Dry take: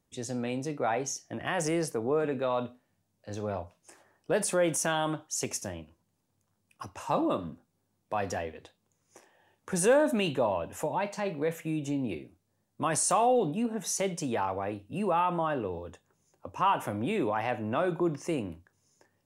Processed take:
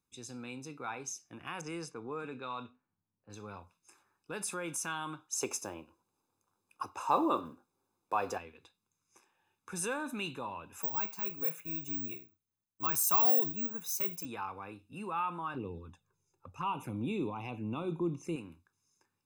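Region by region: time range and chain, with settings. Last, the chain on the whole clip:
1.61–3.3 low-pass opened by the level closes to 900 Hz, open at -24 dBFS + LPF 12000 Hz
5.32–8.38 block floating point 7-bit + EQ curve 190 Hz 0 dB, 350 Hz +11 dB, 610 Hz +15 dB, 2000 Hz +3 dB
10.82–14.25 careless resampling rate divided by 2×, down none, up zero stuff + three-band expander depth 40%
15.54–18.36 low shelf 500 Hz +10 dB + envelope flanger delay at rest 2.4 ms, full sweep at -22 dBFS
whole clip: low shelf 350 Hz -9.5 dB; comb 0.8 ms, depth 78%; gain -8 dB

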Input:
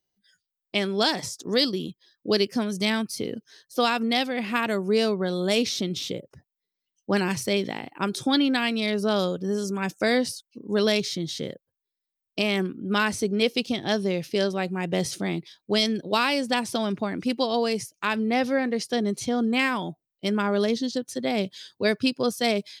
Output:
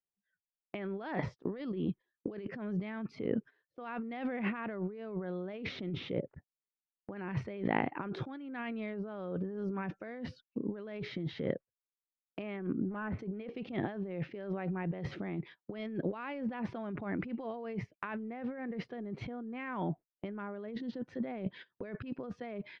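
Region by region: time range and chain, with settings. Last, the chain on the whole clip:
12.67–13.19 hard clip -20 dBFS + air absorption 500 m + Doppler distortion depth 0.12 ms
whole clip: LPF 2100 Hz 24 dB/oct; gate -46 dBFS, range -22 dB; negative-ratio compressor -35 dBFS, ratio -1; gain -3.5 dB

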